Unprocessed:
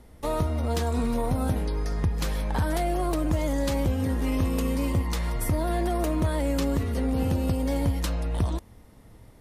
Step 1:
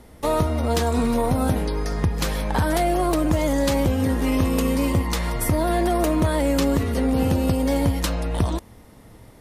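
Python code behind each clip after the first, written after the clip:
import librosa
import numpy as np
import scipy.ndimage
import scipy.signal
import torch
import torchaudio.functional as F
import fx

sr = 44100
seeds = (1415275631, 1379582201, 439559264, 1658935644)

y = fx.low_shelf(x, sr, hz=97.0, db=-7.0)
y = y * 10.0 ** (7.0 / 20.0)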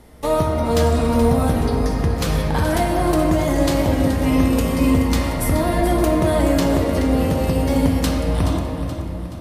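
y = fx.echo_feedback(x, sr, ms=426, feedback_pct=48, wet_db=-11)
y = fx.room_shoebox(y, sr, seeds[0], volume_m3=190.0, walls='hard', distance_m=0.39)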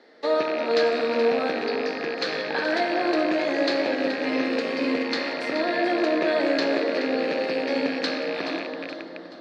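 y = fx.rattle_buzz(x, sr, strikes_db=-21.0, level_db=-19.0)
y = fx.cabinet(y, sr, low_hz=300.0, low_slope=24, high_hz=4700.0, hz=(480.0, 1000.0, 1700.0, 3000.0, 4300.0), db=(3, -7, 9, -4, 10))
y = y * 10.0 ** (-3.5 / 20.0)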